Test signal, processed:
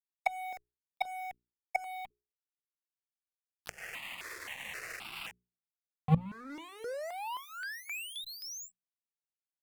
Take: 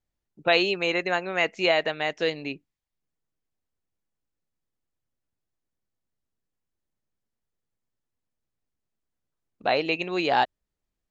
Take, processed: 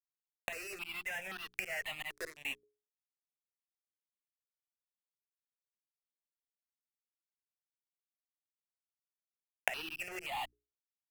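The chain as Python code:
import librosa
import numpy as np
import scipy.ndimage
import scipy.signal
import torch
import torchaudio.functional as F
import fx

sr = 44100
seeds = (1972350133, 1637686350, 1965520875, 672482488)

y = fx.spec_quant(x, sr, step_db=15)
y = fx.cabinet(y, sr, low_hz=220.0, low_slope=24, high_hz=5400.0, hz=(260.0, 570.0, 1900.0, 2700.0), db=(-8, -5, 10, 9))
y = fx.notch(y, sr, hz=3900.0, q=6.6)
y = fx.auto_swell(y, sr, attack_ms=280.0)
y = fx.fuzz(y, sr, gain_db=43.0, gate_db=-40.0)
y = fx.dynamic_eq(y, sr, hz=2100.0, q=0.94, threshold_db=-27.0, ratio=4.0, max_db=3)
y = fx.gate_flip(y, sr, shuts_db=-15.0, range_db=-25)
y = fx.transient(y, sr, attack_db=3, sustain_db=-2)
y = fx.rider(y, sr, range_db=3, speed_s=2.0)
y = fx.hum_notches(y, sr, base_hz=60, count=7)
y = fx.phaser_held(y, sr, hz=3.8, low_hz=780.0, high_hz=2100.0)
y = y * librosa.db_to_amplitude(1.0)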